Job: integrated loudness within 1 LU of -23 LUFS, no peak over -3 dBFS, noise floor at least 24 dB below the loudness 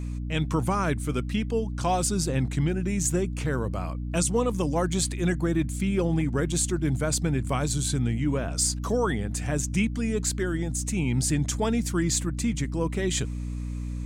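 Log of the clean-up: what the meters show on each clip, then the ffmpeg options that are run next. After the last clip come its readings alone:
hum 60 Hz; harmonics up to 300 Hz; hum level -29 dBFS; loudness -27.0 LUFS; peak -12.0 dBFS; loudness target -23.0 LUFS
-> -af "bandreject=f=60:t=h:w=4,bandreject=f=120:t=h:w=4,bandreject=f=180:t=h:w=4,bandreject=f=240:t=h:w=4,bandreject=f=300:t=h:w=4"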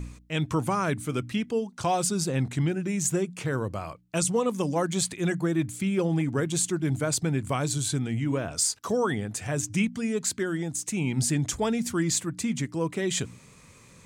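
hum none; loudness -27.5 LUFS; peak -13.5 dBFS; loudness target -23.0 LUFS
-> -af "volume=4.5dB"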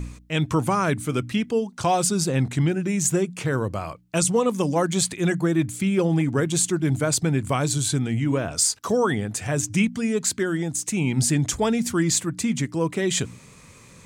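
loudness -23.0 LUFS; peak -9.0 dBFS; noise floor -49 dBFS

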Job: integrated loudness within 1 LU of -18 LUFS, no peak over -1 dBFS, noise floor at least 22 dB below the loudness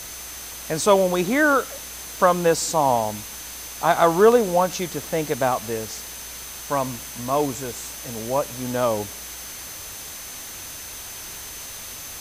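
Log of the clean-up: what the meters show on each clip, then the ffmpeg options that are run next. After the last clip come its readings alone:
steady tone 6200 Hz; tone level -40 dBFS; noise floor -36 dBFS; noise floor target -46 dBFS; loudness -23.5 LUFS; peak -3.0 dBFS; loudness target -18.0 LUFS
-> -af "bandreject=f=6.2k:w=30"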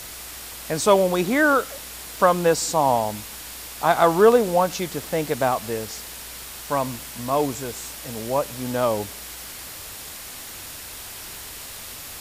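steady tone none; noise floor -38 dBFS; noise floor target -44 dBFS
-> -af "afftdn=nr=6:nf=-38"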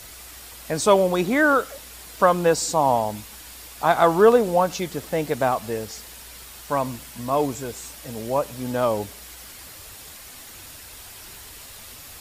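noise floor -42 dBFS; noise floor target -44 dBFS
-> -af "afftdn=nr=6:nf=-42"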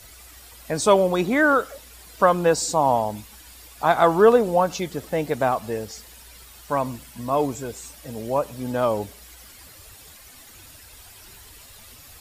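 noise floor -47 dBFS; loudness -21.5 LUFS; peak -3.5 dBFS; loudness target -18.0 LUFS
-> -af "volume=3.5dB,alimiter=limit=-1dB:level=0:latency=1"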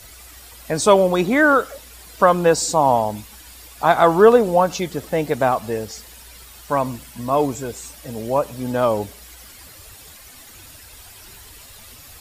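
loudness -18.0 LUFS; peak -1.0 dBFS; noise floor -43 dBFS

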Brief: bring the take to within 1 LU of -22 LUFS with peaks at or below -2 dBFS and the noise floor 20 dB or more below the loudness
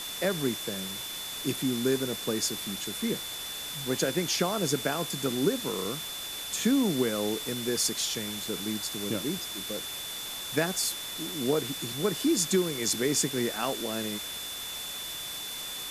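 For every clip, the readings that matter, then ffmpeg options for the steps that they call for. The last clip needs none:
steady tone 3500 Hz; tone level -38 dBFS; noise floor -38 dBFS; noise floor target -50 dBFS; loudness -29.5 LUFS; peak -12.5 dBFS; loudness target -22.0 LUFS
-> -af "bandreject=f=3.5k:w=30"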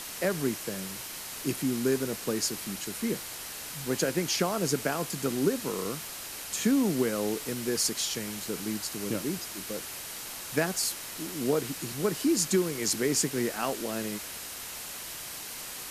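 steady tone none; noise floor -40 dBFS; noise floor target -51 dBFS
-> -af "afftdn=nr=11:nf=-40"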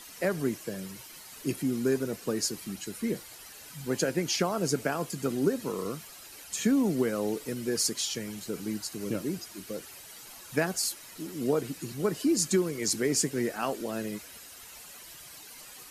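noise floor -48 dBFS; noise floor target -51 dBFS
-> -af "afftdn=nr=6:nf=-48"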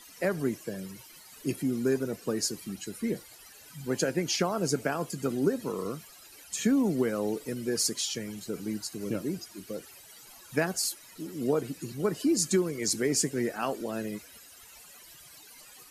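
noise floor -52 dBFS; loudness -30.5 LUFS; peak -12.5 dBFS; loudness target -22.0 LUFS
-> -af "volume=8.5dB"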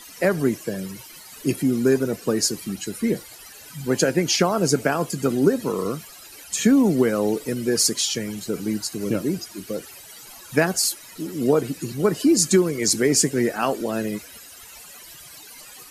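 loudness -22.0 LUFS; peak -4.0 dBFS; noise floor -44 dBFS

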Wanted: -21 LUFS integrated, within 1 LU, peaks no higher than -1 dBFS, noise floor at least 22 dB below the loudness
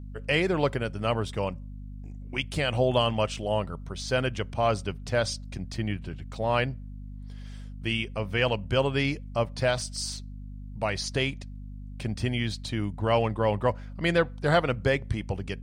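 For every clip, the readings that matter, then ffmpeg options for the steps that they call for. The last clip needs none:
hum 50 Hz; harmonics up to 250 Hz; hum level -37 dBFS; loudness -28.0 LUFS; peak -11.5 dBFS; loudness target -21.0 LUFS
-> -af "bandreject=f=50:t=h:w=6,bandreject=f=100:t=h:w=6,bandreject=f=150:t=h:w=6,bandreject=f=200:t=h:w=6,bandreject=f=250:t=h:w=6"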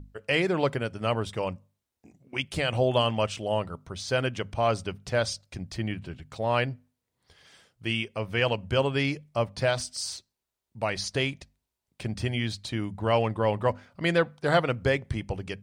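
hum none; loudness -28.5 LUFS; peak -10.5 dBFS; loudness target -21.0 LUFS
-> -af "volume=7.5dB"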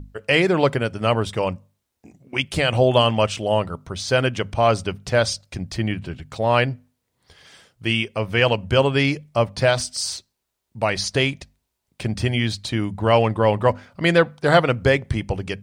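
loudness -21.0 LUFS; peak -3.0 dBFS; noise floor -77 dBFS

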